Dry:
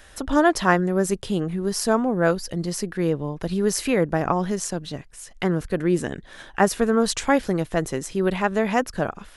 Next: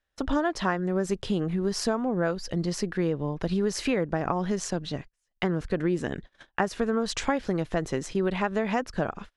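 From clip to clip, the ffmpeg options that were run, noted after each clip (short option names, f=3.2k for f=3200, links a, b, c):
-af "lowpass=5.9k,acompressor=threshold=-22dB:ratio=6,agate=range=-33dB:threshold=-39dB:ratio=16:detection=peak"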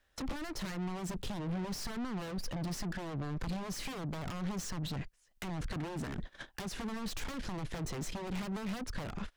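-filter_complex "[0:a]aeval=exprs='0.0501*(abs(mod(val(0)/0.0501+3,4)-2)-1)':c=same,aeval=exprs='(tanh(126*val(0)+0.3)-tanh(0.3))/126':c=same,acrossover=split=290[a][b];[b]acompressor=threshold=-52dB:ratio=4[c];[a][c]amix=inputs=2:normalize=0,volume=9dB"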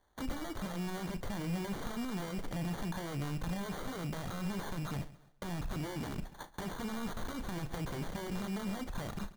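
-filter_complex "[0:a]acrusher=samples=17:mix=1:aa=0.000001,asplit=2[a][b];[b]adelay=35,volume=-12.5dB[c];[a][c]amix=inputs=2:normalize=0,aecho=1:1:136|272|408:0.133|0.0413|0.0128"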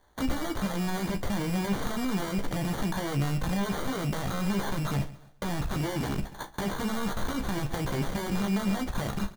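-filter_complex "[0:a]asplit=2[a][b];[b]adelay=15,volume=-7.5dB[c];[a][c]amix=inputs=2:normalize=0,volume=8dB"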